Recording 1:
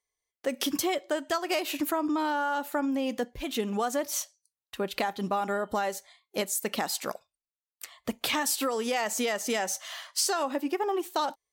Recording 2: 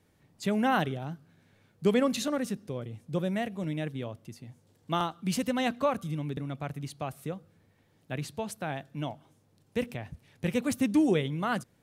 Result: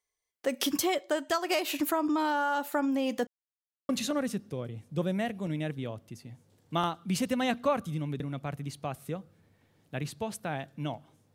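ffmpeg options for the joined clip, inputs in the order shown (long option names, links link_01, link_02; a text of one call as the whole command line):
ffmpeg -i cue0.wav -i cue1.wav -filter_complex "[0:a]apad=whole_dur=11.34,atrim=end=11.34,asplit=2[link_01][link_02];[link_01]atrim=end=3.27,asetpts=PTS-STARTPTS,afade=type=out:start_time=3.266:duration=0.004:curve=hsin[link_03];[link_02]atrim=start=3.27:end=3.89,asetpts=PTS-STARTPTS,volume=0[link_04];[1:a]atrim=start=2.06:end=9.51,asetpts=PTS-STARTPTS,afade=type=in:duration=0.004:curve=hsin[link_05];[link_03][link_04][link_05]concat=n=3:v=0:a=1" out.wav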